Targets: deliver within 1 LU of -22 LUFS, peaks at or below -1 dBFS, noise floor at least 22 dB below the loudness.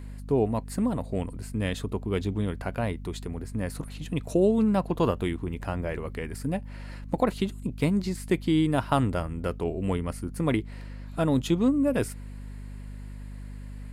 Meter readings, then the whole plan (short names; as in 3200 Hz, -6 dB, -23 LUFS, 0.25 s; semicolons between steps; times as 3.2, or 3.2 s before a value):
hum 50 Hz; harmonics up to 250 Hz; hum level -37 dBFS; loudness -28.0 LUFS; peak -10.5 dBFS; loudness target -22.0 LUFS
-> de-hum 50 Hz, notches 5; gain +6 dB